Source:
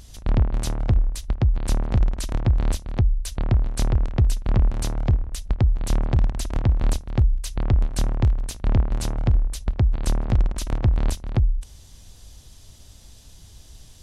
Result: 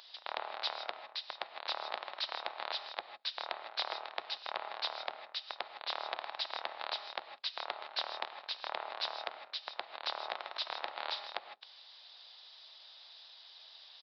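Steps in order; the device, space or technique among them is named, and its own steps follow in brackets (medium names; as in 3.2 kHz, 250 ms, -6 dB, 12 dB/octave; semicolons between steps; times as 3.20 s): 10.73–11.25 s: doubling 40 ms -9 dB; gated-style reverb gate 180 ms rising, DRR 8.5 dB; musical greeting card (resampled via 11.025 kHz; high-pass 710 Hz 24 dB/octave; peaking EQ 3.8 kHz +7.5 dB 0.33 oct); trim -1.5 dB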